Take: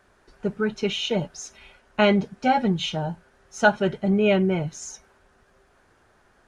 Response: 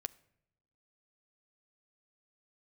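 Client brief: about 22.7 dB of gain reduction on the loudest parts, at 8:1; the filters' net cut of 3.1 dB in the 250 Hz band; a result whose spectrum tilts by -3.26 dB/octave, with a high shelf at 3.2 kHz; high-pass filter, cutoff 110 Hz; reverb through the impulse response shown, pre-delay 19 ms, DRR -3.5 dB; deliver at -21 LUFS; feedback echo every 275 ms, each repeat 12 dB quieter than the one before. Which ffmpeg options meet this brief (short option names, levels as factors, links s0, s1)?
-filter_complex "[0:a]highpass=110,equalizer=f=250:t=o:g=-4,highshelf=f=3200:g=4.5,acompressor=threshold=0.0158:ratio=8,aecho=1:1:275|550|825:0.251|0.0628|0.0157,asplit=2[s0][s1];[1:a]atrim=start_sample=2205,adelay=19[s2];[s1][s2]afir=irnorm=-1:irlink=0,volume=2[s3];[s0][s3]amix=inputs=2:normalize=0,volume=4.47"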